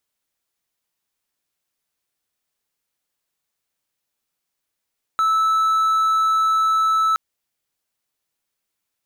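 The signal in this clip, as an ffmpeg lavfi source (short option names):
-f lavfi -i "aevalsrc='0.224*(1-4*abs(mod(1310*t+0.25,1)-0.5))':d=1.97:s=44100"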